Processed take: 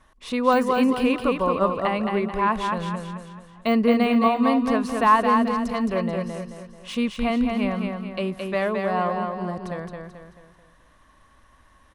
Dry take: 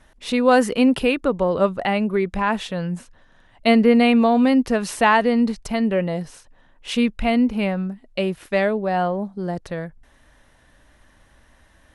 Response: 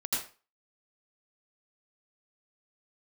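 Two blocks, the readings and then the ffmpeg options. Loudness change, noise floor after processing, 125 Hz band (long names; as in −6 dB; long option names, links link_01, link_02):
−3.0 dB, −56 dBFS, −3.5 dB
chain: -filter_complex "[0:a]deesser=0.65,equalizer=frequency=1100:width_type=o:width=0.22:gain=14.5,asplit=2[link_01][link_02];[link_02]aecho=0:1:218|436|654|872|1090:0.596|0.256|0.11|0.0474|0.0204[link_03];[link_01][link_03]amix=inputs=2:normalize=0,volume=-5dB"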